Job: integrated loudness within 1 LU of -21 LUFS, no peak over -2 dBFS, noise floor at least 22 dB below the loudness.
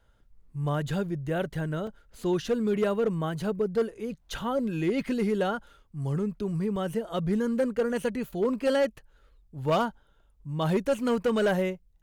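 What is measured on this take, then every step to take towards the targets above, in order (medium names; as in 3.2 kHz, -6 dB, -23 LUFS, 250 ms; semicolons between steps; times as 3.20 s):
clipped samples 0.9%; clipping level -19.0 dBFS; dropouts 3; longest dropout 2.6 ms; loudness -29.0 LUFS; peak level -19.0 dBFS; loudness target -21.0 LUFS
-> clip repair -19 dBFS; interpolate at 1.87/2.47/6.76 s, 2.6 ms; trim +8 dB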